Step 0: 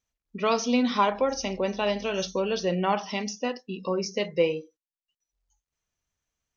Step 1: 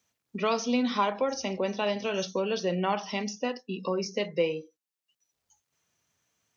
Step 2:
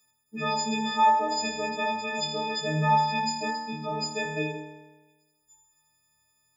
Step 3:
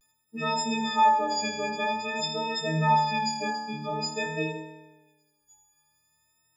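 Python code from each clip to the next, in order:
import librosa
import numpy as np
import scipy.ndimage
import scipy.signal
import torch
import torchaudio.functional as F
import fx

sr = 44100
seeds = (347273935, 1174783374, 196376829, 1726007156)

y1 = scipy.signal.sosfilt(scipy.signal.butter(4, 100.0, 'highpass', fs=sr, output='sos'), x)
y1 = fx.band_squash(y1, sr, depth_pct=40)
y1 = F.gain(torch.from_numpy(y1), -2.5).numpy()
y2 = fx.freq_snap(y1, sr, grid_st=6)
y2 = fx.room_flutter(y2, sr, wall_m=4.5, rt60_s=1.2)
y2 = F.gain(torch.from_numpy(y2), -3.0).numpy()
y3 = fx.vibrato(y2, sr, rate_hz=0.49, depth_cents=51.0)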